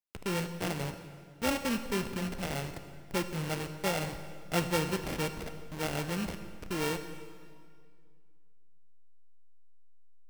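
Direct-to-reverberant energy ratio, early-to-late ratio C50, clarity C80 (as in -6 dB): 8.5 dB, 9.5 dB, 10.5 dB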